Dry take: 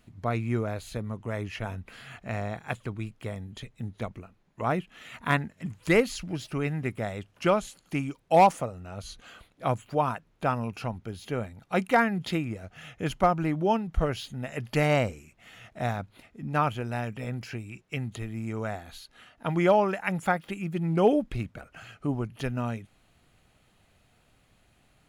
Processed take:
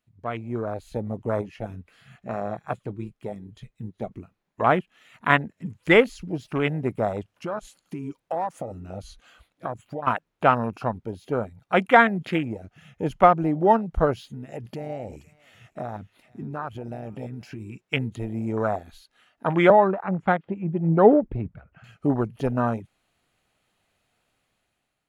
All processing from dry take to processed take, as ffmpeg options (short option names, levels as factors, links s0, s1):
-filter_complex "[0:a]asettb=1/sr,asplit=3[s0][s1][s2];[s0]atrim=end=1.414[s3];[s1]atrim=start=1.41:end=4.12,asetpts=PTS-STARTPTS,afade=t=in:d=0.004:c=qsin,afade=t=out:st=2.706:d=0.004:c=qsin,bandreject=f=930:w=13,flanger=delay=4.9:depth=1.8:regen=-61:speed=1.1:shape=sinusoidal[s4];[s2]atrim=start=4.116[s5];[s3][s4]acrossfade=d=0.004:c1=hsin:c2=qsin[s6];[s6][s5]acrossfade=d=0.004:c1=qsin:c2=hsin,asettb=1/sr,asplit=3[s7][s8][s9];[s7]atrim=end=7.324[s10];[s8]atrim=start=7.32:end=10.07,asetpts=PTS-STARTPTS,afade=t=in:d=0.004:c=qsin,afade=t=out:st=2.746:d=0.004:c=qsin,bandreject=f=410:w=9.2,acompressor=threshold=0.02:ratio=12:attack=3.2:release=140:knee=1:detection=peak[s11];[s9]atrim=start=10.066[s12];[s10][s11]acrossfade=d=0.004:c1=hsin:c2=qsin[s13];[s13][s12]acrossfade=d=0.004:c1=qsin:c2=hsin,asettb=1/sr,asplit=3[s14][s15][s16];[s14]atrim=end=14.264[s17];[s15]atrim=start=14.26:end=17.62,asetpts=PTS-STARTPTS,afade=t=in:d=0.004:c=qsin,afade=t=out:st=3.356:d=0.004:c=qsin,acompressor=threshold=0.0178:ratio=16:attack=3.2:release=140:knee=1:detection=peak,aecho=1:1:478:0.168,atrim=end_sample=148176[s18];[s16]atrim=start=17.616[s19];[s17][s18]acrossfade=d=0.004:c1=hsin:c2=qsin[s20];[s20][s19]acrossfade=d=0.004:c1=qsin:c2=hsin,asettb=1/sr,asplit=3[s21][s22][s23];[s21]atrim=end=19.704[s24];[s22]atrim=start=19.7:end=21.84,asetpts=PTS-STARTPTS,afade=t=in:d=0.004:c=qsin,afade=t=out:st=2.136:d=0.004:c=qsin,lowpass=2100,equalizer=f=83:t=o:w=2.5:g=6,acrossover=split=500[s25][s26];[s25]aeval=exprs='val(0)*(1-0.5/2+0.5/2*cos(2*PI*5*n/s))':c=same[s27];[s26]aeval=exprs='val(0)*(1-0.5/2-0.5/2*cos(2*PI*5*n/s))':c=same[s28];[s27][s28]amix=inputs=2:normalize=0[s29];[s23]atrim=start=21.836[s30];[s24][s29]acrossfade=d=0.004:c1=hsin:c2=qsin[s31];[s31][s30]acrossfade=d=0.004:c1=qsin:c2=hsin,afwtdn=0.0158,lowshelf=f=220:g=-10.5,dynaudnorm=f=230:g=7:m=3.76"